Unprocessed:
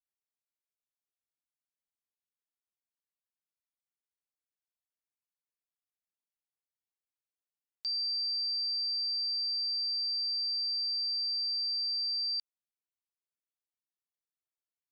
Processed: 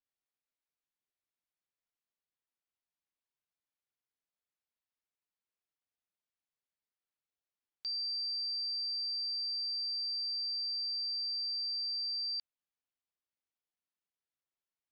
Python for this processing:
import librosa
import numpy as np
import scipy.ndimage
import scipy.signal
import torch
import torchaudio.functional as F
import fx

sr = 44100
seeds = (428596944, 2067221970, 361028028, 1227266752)

y = fx.lower_of_two(x, sr, delay_ms=1.7, at=(8.05, 10.32), fade=0.02)
y = scipy.signal.sosfilt(scipy.signal.butter(2, 4400.0, 'lowpass', fs=sr, output='sos'), y)